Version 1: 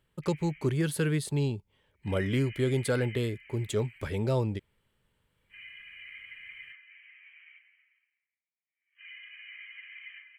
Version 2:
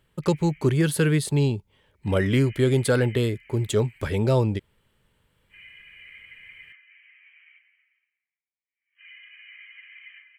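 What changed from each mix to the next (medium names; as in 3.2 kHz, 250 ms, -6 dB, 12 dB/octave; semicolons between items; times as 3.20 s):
speech +7.0 dB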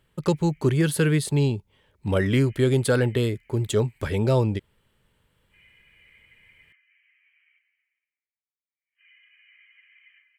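background -10.0 dB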